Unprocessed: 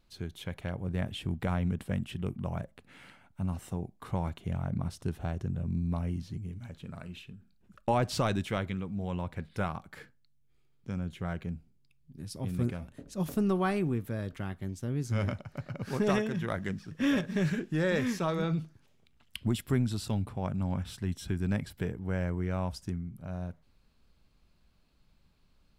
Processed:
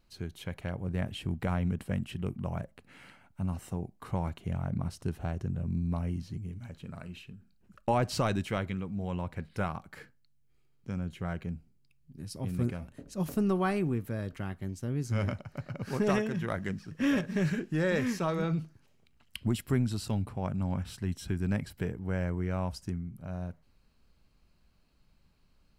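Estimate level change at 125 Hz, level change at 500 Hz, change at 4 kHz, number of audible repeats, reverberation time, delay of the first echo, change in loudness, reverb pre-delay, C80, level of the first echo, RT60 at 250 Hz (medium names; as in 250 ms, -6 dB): 0.0 dB, 0.0 dB, -1.5 dB, no echo, no reverb, no echo, 0.0 dB, no reverb, no reverb, no echo, no reverb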